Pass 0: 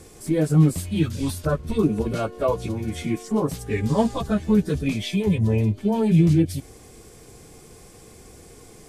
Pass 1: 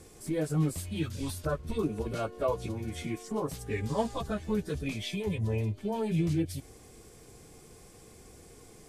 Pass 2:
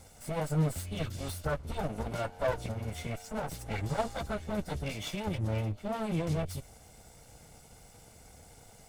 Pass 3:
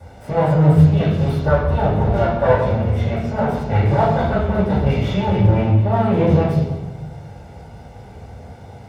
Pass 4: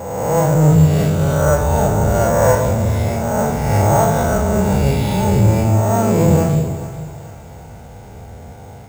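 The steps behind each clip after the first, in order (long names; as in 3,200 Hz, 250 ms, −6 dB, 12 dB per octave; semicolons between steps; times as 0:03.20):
dynamic equaliser 200 Hz, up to −7 dB, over −30 dBFS, Q 0.95; level −6.5 dB
lower of the sound and its delayed copy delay 1.4 ms
convolution reverb RT60 1.1 s, pre-delay 3 ms, DRR −11 dB; level −4 dB
peak hold with a rise ahead of every peak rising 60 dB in 1.46 s; bad sample-rate conversion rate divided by 6×, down none, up hold; feedback echo with a high-pass in the loop 434 ms, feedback 47%, high-pass 390 Hz, level −14.5 dB; level −1 dB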